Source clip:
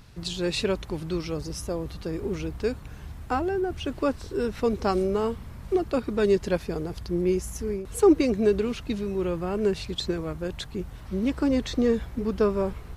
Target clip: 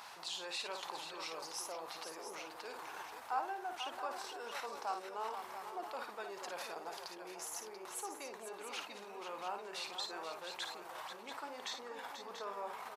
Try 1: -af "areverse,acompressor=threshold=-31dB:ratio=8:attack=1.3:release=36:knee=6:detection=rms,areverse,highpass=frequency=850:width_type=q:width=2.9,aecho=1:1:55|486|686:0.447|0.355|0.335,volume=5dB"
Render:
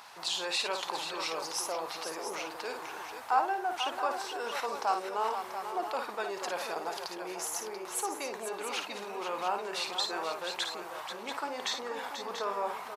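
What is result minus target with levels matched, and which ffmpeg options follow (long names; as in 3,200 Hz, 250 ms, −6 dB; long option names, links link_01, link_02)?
downward compressor: peak gain reduction −10 dB
-af "areverse,acompressor=threshold=-42.5dB:ratio=8:attack=1.3:release=36:knee=6:detection=rms,areverse,highpass=frequency=850:width_type=q:width=2.9,aecho=1:1:55|486|686:0.447|0.355|0.335,volume=5dB"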